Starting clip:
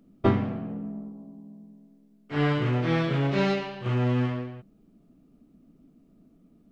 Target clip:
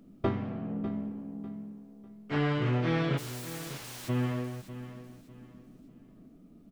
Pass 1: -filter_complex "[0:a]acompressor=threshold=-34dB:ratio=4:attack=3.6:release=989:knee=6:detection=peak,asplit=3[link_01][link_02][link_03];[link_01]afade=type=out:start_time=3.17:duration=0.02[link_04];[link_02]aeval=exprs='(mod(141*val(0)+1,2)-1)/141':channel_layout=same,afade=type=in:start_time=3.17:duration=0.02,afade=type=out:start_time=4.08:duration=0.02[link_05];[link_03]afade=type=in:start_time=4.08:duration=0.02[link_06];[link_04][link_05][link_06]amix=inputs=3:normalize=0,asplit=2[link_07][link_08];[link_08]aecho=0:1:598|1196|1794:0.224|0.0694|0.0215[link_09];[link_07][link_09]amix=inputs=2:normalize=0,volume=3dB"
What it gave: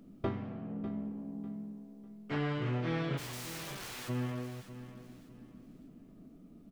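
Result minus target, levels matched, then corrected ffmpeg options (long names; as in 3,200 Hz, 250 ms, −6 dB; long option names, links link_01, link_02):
downward compressor: peak gain reduction +5.5 dB
-filter_complex "[0:a]acompressor=threshold=-26.5dB:ratio=4:attack=3.6:release=989:knee=6:detection=peak,asplit=3[link_01][link_02][link_03];[link_01]afade=type=out:start_time=3.17:duration=0.02[link_04];[link_02]aeval=exprs='(mod(141*val(0)+1,2)-1)/141':channel_layout=same,afade=type=in:start_time=3.17:duration=0.02,afade=type=out:start_time=4.08:duration=0.02[link_05];[link_03]afade=type=in:start_time=4.08:duration=0.02[link_06];[link_04][link_05][link_06]amix=inputs=3:normalize=0,asplit=2[link_07][link_08];[link_08]aecho=0:1:598|1196|1794:0.224|0.0694|0.0215[link_09];[link_07][link_09]amix=inputs=2:normalize=0,volume=3dB"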